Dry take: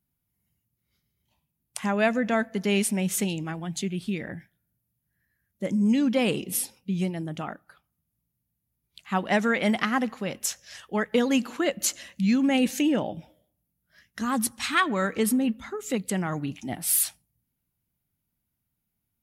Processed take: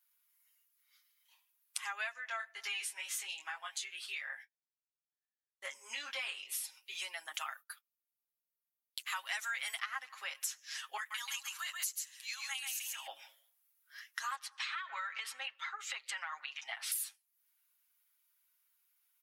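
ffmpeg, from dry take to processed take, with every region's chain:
-filter_complex "[0:a]asettb=1/sr,asplit=3[a][b][c];[a]atrim=end=2.134[d];[b]atrim=start=2.13:end=6.64,asetpts=PTS-STARTPTS,afade=t=in:d=0.004:c=qsin,afade=t=out:st=4.506:d=0.004:c=qsin,highshelf=f=8.1k:g=-6.5,flanger=delay=20:depth=2.2:speed=2,agate=range=-33dB:threshold=-46dB:ratio=3:release=100:detection=peak[e];[c]atrim=start=6.636[f];[d][e]acrossfade=d=0.004:c1=hsin:c2=qsin[g];[g][f]acrossfade=d=0.004:c1=qsin:c2=hsin,asettb=1/sr,asplit=3[h][i][j];[h]atrim=end=7.344[k];[i]atrim=start=7.34:end=9.79,asetpts=PTS-STARTPTS,afade=t=in:d=0.004:c=qsin,afade=t=out:st=2.446:d=0.004:c=qsin,agate=range=-33dB:threshold=-50dB:ratio=3:release=100:detection=peak,aemphasis=mode=production:type=75kf[l];[j]atrim=start=9.786[m];[k][l]acrossfade=d=0.004:c1=hsin:c2=qsin[n];[n][m]acrossfade=d=0.004:c1=qsin:c2=hsin,asettb=1/sr,asplit=3[o][p][q];[o]atrim=end=10.974[r];[p]atrim=start=10.97:end=13.07,asetpts=PTS-STARTPTS,afade=t=in:d=0.004:c=qsin,afade=t=out:st=2.096:d=0.004:c=qsin,highpass=f=900:t=q:w=2.6,aderivative,aecho=1:1:134:0.596,atrim=end_sample=92610[s];[q]atrim=start=13.066[t];[r][s]acrossfade=d=0.004:c1=hsin:c2=qsin[u];[u][t]acrossfade=d=0.004:c1=qsin:c2=hsin,asettb=1/sr,asplit=3[v][w][x];[v]atrim=end=14.354[y];[w]atrim=start=14.35:end=16.92,asetpts=PTS-STARTPTS,afade=t=in:d=0.004:c=qsin,afade=t=out:st=2.566:d=0.004:c=qsin,acrossover=split=480 5200:gain=0.0794 1 0.0631[z][aa][ab];[z][aa][ab]amix=inputs=3:normalize=0,acompressor=threshold=-30dB:ratio=12:attack=3.2:release=140:knee=1:detection=peak[ac];[x]atrim=start=16.916[ad];[y][ac]acrossfade=d=0.004:c1=hsin:c2=qsin[ae];[ae][ad]acrossfade=d=0.004:c1=qsin:c2=hsin,highpass=f=1.1k:w=0.5412,highpass=f=1.1k:w=1.3066,aecho=1:1:7.4:0.87,acompressor=threshold=-43dB:ratio=5,volume=4.5dB"

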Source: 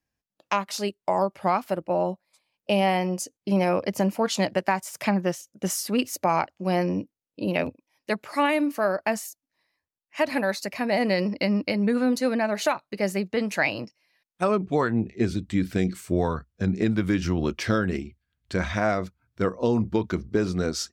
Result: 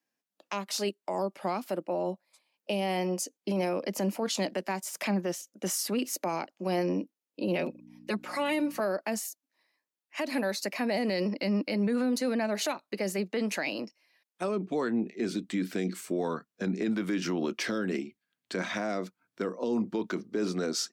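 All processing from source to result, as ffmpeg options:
-filter_complex "[0:a]asettb=1/sr,asplit=3[a][b][c];[a]atrim=end=7.434[d];[b]atrim=start=7.43:end=8.8,asetpts=PTS-STARTPTS,afade=t=in:d=0.004:c=qsin,afade=t=out:st=1.366:d=0.004:c=qsin,highshelf=f=7.2k:g=-4,aecho=1:1:5.5:0.8,atrim=end_sample=60417,aeval=exprs='val(0)+0.01*(sin(2*PI*60*n/s)+sin(2*PI*2*60*n/s)/2+sin(2*PI*3*60*n/s)/3+sin(2*PI*4*60*n/s)/4+sin(2*PI*5*60*n/s)/5)':c=same[e];[c]atrim=start=8.796[f];[d][e]acrossfade=d=0.004:c1=hsin:c2=qsin[g];[g][f]acrossfade=d=0.004:c1=qsin:c2=hsin,highpass=f=210:w=0.5412,highpass=f=210:w=1.3066,acrossover=split=470|3000[h][i][j];[i]acompressor=threshold=-31dB:ratio=6[k];[h][k][j]amix=inputs=3:normalize=0,alimiter=limit=-21.5dB:level=0:latency=1:release=23"

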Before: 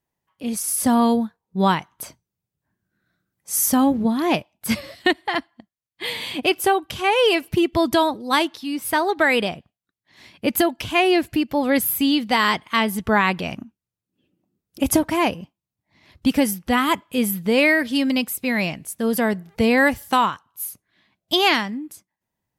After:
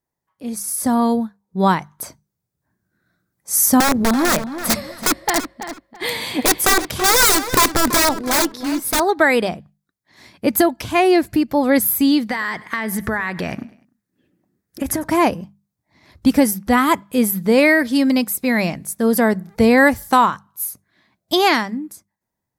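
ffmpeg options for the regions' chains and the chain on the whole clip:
-filter_complex "[0:a]asettb=1/sr,asplit=3[a][b][c];[a]atrim=end=3.804[d];[b]atrim=start=3.8:end=9,asetpts=PTS-STARTPTS,afade=t=in:d=0.004:c=qsin,afade=t=out:st=5.196:d=0.004:c=qsin,aeval=exprs='(mod(5.31*val(0)+1,2)-1)/5.31':c=same,asplit=2[e][f];[f]adelay=332,lowpass=f=4.2k:p=1,volume=-11dB,asplit=2[g][h];[h]adelay=332,lowpass=f=4.2k:p=1,volume=0.25,asplit=2[i][j];[j]adelay=332,lowpass=f=4.2k:p=1,volume=0.25[k];[e][g][i][k]amix=inputs=4:normalize=0,atrim=end_sample=229320[l];[c]atrim=start=8.996[m];[d][l]acrossfade=d=0.004:c1=hsin:c2=qsin[n];[n][m]acrossfade=d=0.004:c1=qsin:c2=hsin,asettb=1/sr,asplit=3[o][p][q];[o]atrim=end=12.294[r];[p]atrim=start=12.29:end=15.04,asetpts=PTS-STARTPTS,afade=t=in:d=0.004:c=qsin,afade=t=out:st=2.746:d=0.004:c=qsin,equalizer=f=1.8k:w=2.9:g=11.5,acompressor=threshold=-22dB:ratio=12:attack=3.2:release=140:knee=1:detection=peak,aecho=1:1:100|200|300:0.0944|0.0425|0.0191,atrim=end_sample=121275[s];[q]atrim=start=15.036[t];[r][s]acrossfade=d=0.004:c1=hsin:c2=qsin[u];[u][t]acrossfade=d=0.004:c1=qsin:c2=hsin,equalizer=f=2.9k:w=2.5:g=-10,dynaudnorm=f=640:g=5:m=11.5dB,bandreject=f=50:t=h:w=6,bandreject=f=100:t=h:w=6,bandreject=f=150:t=h:w=6,bandreject=f=200:t=h:w=6,volume=-1dB"

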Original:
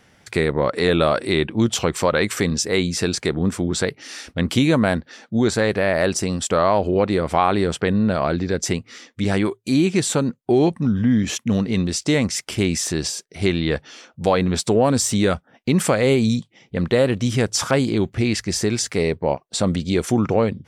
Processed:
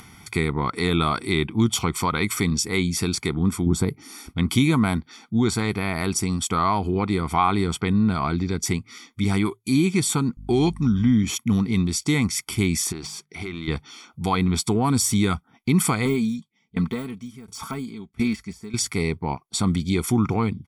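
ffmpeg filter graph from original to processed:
-filter_complex "[0:a]asettb=1/sr,asplit=3[a][b][c];[a]atrim=end=3.664[d];[b]atrim=start=3.66:end=4.29,asetpts=PTS-STARTPTS,afade=t=in:d=0.004:c=qsin,afade=t=out:st=0.626:d=0.004:c=qsin,equalizer=f=3.2k:w=0.34:g=-14,acontrast=53[e];[c]atrim=start=4.286[f];[d][e]acrossfade=d=0.004:c1=hsin:c2=qsin[g];[g][f]acrossfade=d=0.004:c1=qsin:c2=hsin,asettb=1/sr,asplit=3[h][i][j];[h]atrim=end=10.374[k];[i]atrim=start=10.37:end=11.11,asetpts=PTS-STARTPTS,afade=t=in:d=0.004:c=qsin,afade=t=out:st=0.736:d=0.004:c=qsin,equalizer=f=5.4k:t=o:w=2:g=7.5,aeval=exprs='val(0)+0.0126*(sin(2*PI*50*n/s)+sin(2*PI*2*50*n/s)/2+sin(2*PI*3*50*n/s)/3+sin(2*PI*4*50*n/s)/4+sin(2*PI*5*50*n/s)/5)':c=same[l];[j]atrim=start=11.106[m];[k][l]acrossfade=d=0.004:c1=hsin:c2=qsin[n];[n][m]acrossfade=d=0.004:c1=qsin:c2=hsin,asettb=1/sr,asplit=3[o][p][q];[o]atrim=end=12.924[r];[p]atrim=start=12.92:end=13.68,asetpts=PTS-STARTPTS,afade=t=in:d=0.004:c=qsin,afade=t=out:st=0.756:d=0.004:c=qsin,bandreject=f=50:t=h:w=6,bandreject=f=100:t=h:w=6,bandreject=f=150:t=h:w=6,bandreject=f=200:t=h:w=6,acompressor=threshold=-25dB:ratio=12:attack=3.2:release=140:knee=1:detection=peak,asplit=2[s][t];[t]highpass=f=720:p=1,volume=13dB,asoftclip=type=tanh:threshold=-11.5dB[u];[s][u]amix=inputs=2:normalize=0,lowpass=f=1.7k:p=1,volume=-6dB[v];[q]atrim=start=13.676[w];[r][v]acrossfade=d=0.004:c1=hsin:c2=qsin[x];[x][w]acrossfade=d=0.004:c1=qsin:c2=hsin,asettb=1/sr,asplit=3[y][z][aa];[y]atrim=end=16.054[ab];[z]atrim=start=16.05:end=18.74,asetpts=PTS-STARTPTS,afade=t=in:d=0.004:c=qsin,afade=t=out:st=2.686:d=0.004:c=qsin,deesser=0.75,aecho=1:1:4.5:0.62,atrim=end_sample=118629,aeval=exprs='val(0)*pow(10,-23*if(lt(mod(1.4*n/s,1),2*abs(1.4)/1000),1-mod(1.4*n/s,1)/(2*abs(1.4)/1000),(mod(1.4*n/s,1)-2*abs(1.4)/1000)/(1-2*abs(1.4)/1000))/20)':c=same[ac];[aa]atrim=start=18.736[ad];[ab][ac]acrossfade=d=0.004:c1=hsin:c2=qsin[ae];[ae][ad]acrossfade=d=0.004:c1=qsin:c2=hsin,equalizer=f=11k:t=o:w=0.3:g=13.5,aecho=1:1:0.9:0.95,acompressor=mode=upward:threshold=-32dB:ratio=2.5,volume=-5dB"

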